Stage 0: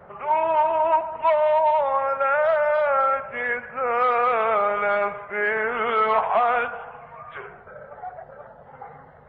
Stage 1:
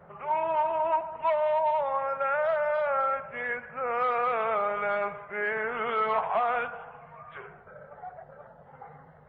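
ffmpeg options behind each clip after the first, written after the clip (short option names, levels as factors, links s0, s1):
-af "equalizer=f=160:t=o:w=0.26:g=8.5,volume=0.473"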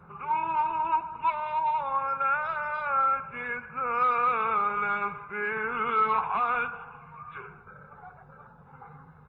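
-af "aecho=1:1:0.8:0.85,volume=0.891"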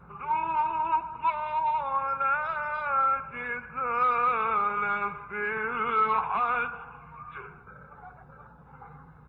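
-af "aeval=exprs='val(0)+0.00126*(sin(2*PI*60*n/s)+sin(2*PI*2*60*n/s)/2+sin(2*PI*3*60*n/s)/3+sin(2*PI*4*60*n/s)/4+sin(2*PI*5*60*n/s)/5)':c=same"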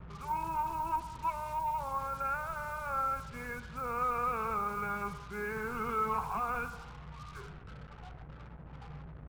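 -af "aemphasis=mode=reproduction:type=riaa,acrusher=bits=6:mix=0:aa=0.5,volume=0.422"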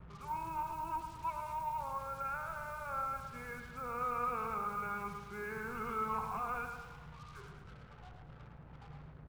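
-af "aecho=1:1:109|218|327|436|545|654:0.398|0.203|0.104|0.0528|0.0269|0.0137,volume=0.562"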